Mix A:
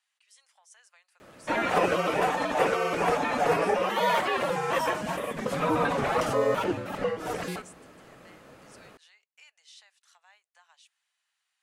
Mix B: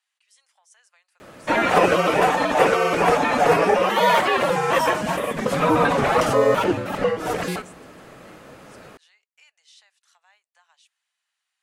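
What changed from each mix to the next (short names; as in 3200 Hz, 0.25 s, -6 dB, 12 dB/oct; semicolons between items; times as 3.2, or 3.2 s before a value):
background +7.5 dB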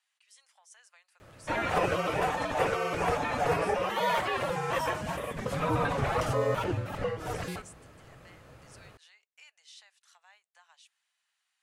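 background -10.5 dB; master: add resonant low shelf 150 Hz +10 dB, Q 1.5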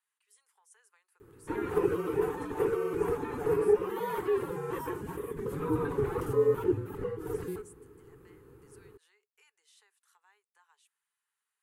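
background -4.0 dB; master: add EQ curve 230 Hz 0 dB, 420 Hz +15 dB, 610 Hz -21 dB, 890 Hz -3 dB, 1500 Hz -5 dB, 2300 Hz -11 dB, 5500 Hz -14 dB, 13000 Hz +6 dB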